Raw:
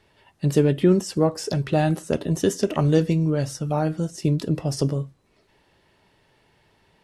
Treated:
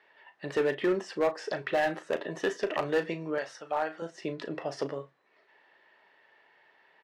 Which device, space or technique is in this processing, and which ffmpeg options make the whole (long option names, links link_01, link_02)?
megaphone: -filter_complex "[0:a]asettb=1/sr,asplit=3[link_01][link_02][link_03];[link_01]atrim=end=3.384[link_04];[link_02]atrim=start=3.38:end=4.02,asetpts=PTS-STARTPTS,afade=type=in:duration=0.004:curve=qsin,afade=type=out:start_time=0.636:duration=0.004:curve=qsin,highpass=frequency=560:poles=1[link_05];[link_03]atrim=start=4.016[link_06];[link_04][link_05]acrossfade=duration=0.004:curve1=hsin:curve2=qsin[link_07];[link_07][link_06]acrossfade=duration=0.004:curve1=qsin:curve2=hsin,highpass=570,lowpass=2700,equalizer=frequency=1800:width_type=o:width=0.28:gain=8,asoftclip=type=hard:threshold=-21dB,asplit=2[link_08][link_09];[link_09]adelay=36,volume=-12dB[link_10];[link_08][link_10]amix=inputs=2:normalize=0"